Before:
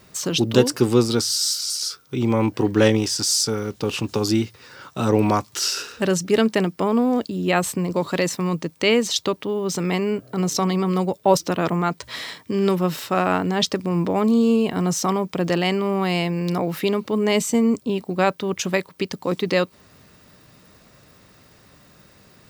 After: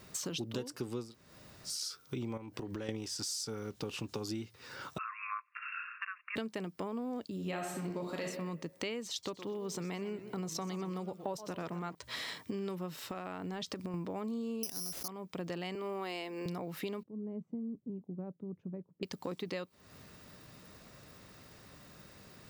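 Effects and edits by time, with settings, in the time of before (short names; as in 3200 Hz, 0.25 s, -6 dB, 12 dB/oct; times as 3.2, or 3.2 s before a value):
1.07–1.72 room tone, crossfade 0.16 s
2.37–2.89 compressor, threshold -27 dBFS
4.98–6.36 brick-wall FIR band-pass 1000–2800 Hz
7.34–8.24 reverb throw, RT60 0.86 s, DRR 0 dB
9.1–11.95 warbling echo 0.122 s, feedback 39%, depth 193 cents, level -14.5 dB
12.94–13.94 compressor, threshold -24 dBFS
14.63–15.08 careless resampling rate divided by 8×, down none, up zero stuff
15.75–16.46 steep high-pass 220 Hz 48 dB/oct
17.03–19.03 ladder band-pass 180 Hz, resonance 30%
whole clip: compressor 6:1, threshold -33 dBFS; gain -4 dB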